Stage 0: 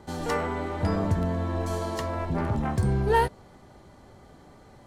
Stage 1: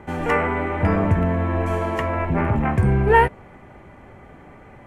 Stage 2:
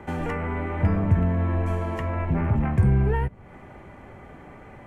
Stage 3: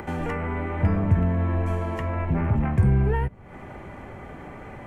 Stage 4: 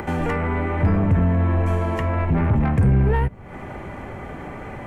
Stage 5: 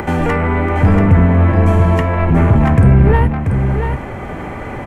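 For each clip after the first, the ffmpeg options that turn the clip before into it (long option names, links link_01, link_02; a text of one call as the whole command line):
ffmpeg -i in.wav -af "highshelf=frequency=3200:width_type=q:width=3:gain=-10,volume=6.5dB" out.wav
ffmpeg -i in.wav -filter_complex "[0:a]acrossover=split=210[link_01][link_02];[link_02]acompressor=threshold=-30dB:ratio=5[link_03];[link_01][link_03]amix=inputs=2:normalize=0" out.wav
ffmpeg -i in.wav -af "acompressor=mode=upward:threshold=-32dB:ratio=2.5" out.wav
ffmpeg -i in.wav -af "asoftclip=type=tanh:threshold=-17dB,volume=6dB" out.wav
ffmpeg -i in.wav -af "aecho=1:1:685:0.473,volume=7.5dB" out.wav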